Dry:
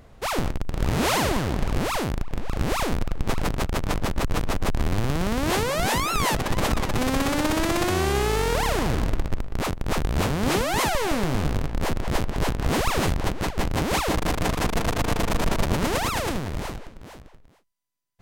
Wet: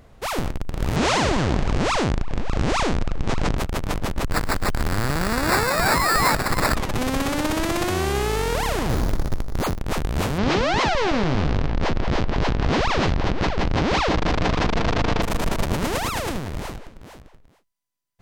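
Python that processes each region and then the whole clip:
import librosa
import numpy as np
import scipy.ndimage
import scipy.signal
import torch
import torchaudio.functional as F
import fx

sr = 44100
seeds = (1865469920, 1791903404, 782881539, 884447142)

y = fx.chain(x, sr, fx.lowpass(hz=7600.0, slope=24),
    fx.env_flatten(amount_pct=70), at=(0.96, 3.58))
y = fx.chain(y, sr, fx.peak_eq(hz=1600.0, db=9.5, octaves=1.4),
    fx.sample_hold(seeds[0], rate_hz=3100.0, jitter_pct=0), at=(4.31, 6.75))
y = fx.chain(y, sr, fx.zero_step(step_db=-25.5),
    fx.lowpass(hz=2600.0, slope=12),
    fx.resample_bad(factor=8, down='none', up='hold'), at=(8.89, 9.79))
y = fx.chain(y, sr, fx.lowpass(hz=5400.0, slope=24),
    fx.env_flatten(amount_pct=70), at=(10.38, 15.22))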